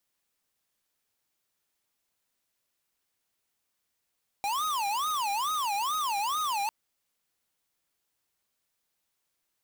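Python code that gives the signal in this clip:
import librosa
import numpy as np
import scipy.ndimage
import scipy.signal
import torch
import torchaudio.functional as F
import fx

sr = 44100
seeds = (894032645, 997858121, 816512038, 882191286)

y = fx.siren(sr, length_s=2.25, kind='wail', low_hz=797.0, high_hz=1260.0, per_s=2.3, wave='square', level_db=-29.5)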